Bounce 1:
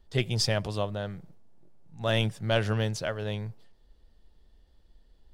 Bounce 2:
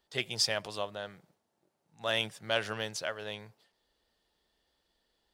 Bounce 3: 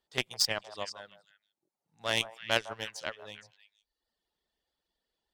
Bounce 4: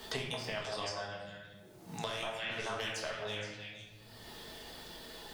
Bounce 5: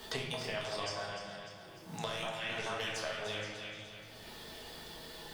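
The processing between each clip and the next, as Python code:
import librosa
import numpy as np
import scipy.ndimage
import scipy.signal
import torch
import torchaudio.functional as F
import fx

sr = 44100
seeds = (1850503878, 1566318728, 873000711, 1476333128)

y1 = fx.highpass(x, sr, hz=880.0, slope=6)
y2 = fx.cheby_harmonics(y1, sr, harmonics=(3, 5, 7), levels_db=(-14, -37, -29), full_scale_db=-13.5)
y2 = fx.dereverb_blind(y2, sr, rt60_s=0.9)
y2 = fx.echo_stepped(y2, sr, ms=156, hz=860.0, octaves=1.4, feedback_pct=70, wet_db=-9)
y2 = y2 * 10.0 ** (6.5 / 20.0)
y3 = fx.over_compress(y2, sr, threshold_db=-39.0, ratio=-1.0)
y3 = fx.room_shoebox(y3, sr, seeds[0], volume_m3=210.0, walls='mixed', distance_m=1.5)
y3 = fx.band_squash(y3, sr, depth_pct=100)
y3 = y3 * 10.0 ** (-3.5 / 20.0)
y4 = fx.comb_fb(y3, sr, f0_hz=160.0, decay_s=1.5, harmonics='all', damping=0.0, mix_pct=70)
y4 = fx.echo_feedback(y4, sr, ms=299, feedback_pct=54, wet_db=-9.5)
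y4 = y4 * 10.0 ** (9.5 / 20.0)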